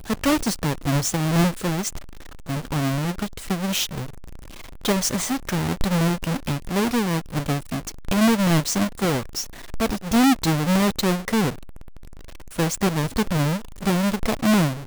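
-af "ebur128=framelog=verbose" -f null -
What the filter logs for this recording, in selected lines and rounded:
Integrated loudness:
  I:         -22.8 LUFS
  Threshold: -33.4 LUFS
Loudness range:
  LRA:         4.2 LU
  Threshold: -43.6 LUFS
  LRA low:   -25.7 LUFS
  LRA high:  -21.5 LUFS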